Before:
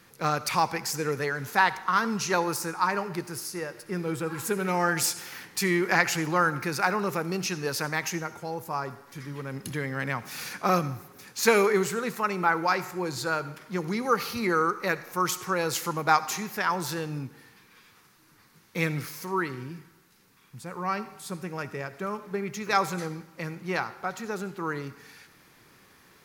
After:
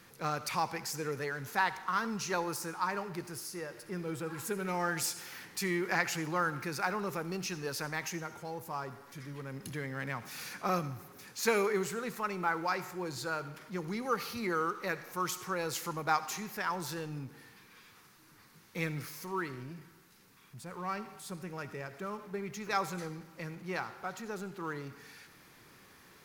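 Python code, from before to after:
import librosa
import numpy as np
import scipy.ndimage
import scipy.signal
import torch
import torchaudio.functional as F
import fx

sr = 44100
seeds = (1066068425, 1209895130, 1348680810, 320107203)

y = fx.law_mismatch(x, sr, coded='mu')
y = y * librosa.db_to_amplitude(-8.5)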